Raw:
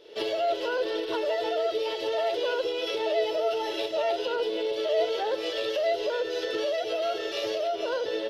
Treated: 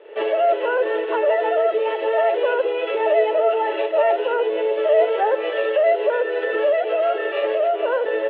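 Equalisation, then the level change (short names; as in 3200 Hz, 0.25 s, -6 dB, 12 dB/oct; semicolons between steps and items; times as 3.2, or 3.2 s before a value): air absorption 380 m; speaker cabinet 370–3100 Hz, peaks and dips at 410 Hz +5 dB, 580 Hz +6 dB, 830 Hz +7 dB, 1200 Hz +7 dB, 1800 Hz +9 dB, 2600 Hz +6 dB; +5.5 dB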